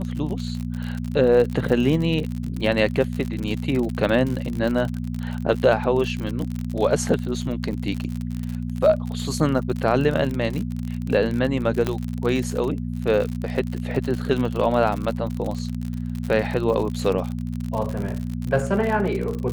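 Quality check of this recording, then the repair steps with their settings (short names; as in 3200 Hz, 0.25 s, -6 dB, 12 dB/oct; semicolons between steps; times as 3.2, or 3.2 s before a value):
crackle 56/s -26 dBFS
hum 60 Hz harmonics 4 -28 dBFS
11.87 pop -10 dBFS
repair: de-click; de-hum 60 Hz, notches 4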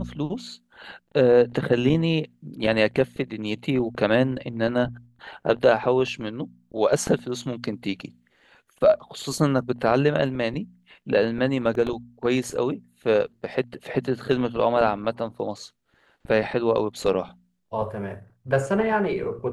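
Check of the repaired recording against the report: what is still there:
11.87 pop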